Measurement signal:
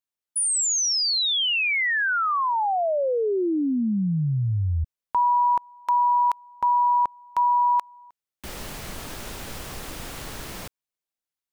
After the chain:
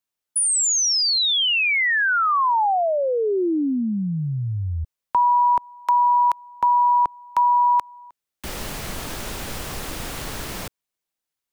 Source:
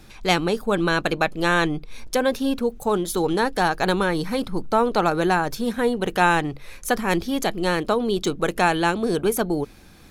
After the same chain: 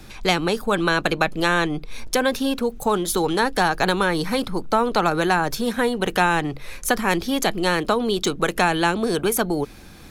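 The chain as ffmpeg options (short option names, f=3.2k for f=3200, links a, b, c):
-filter_complex "[0:a]acrossover=split=350|780[a][b][c];[a]acompressor=threshold=-30dB:ratio=4[d];[b]acompressor=threshold=-31dB:ratio=4[e];[c]acompressor=threshold=-23dB:ratio=4[f];[d][e][f]amix=inputs=3:normalize=0,volume=5dB"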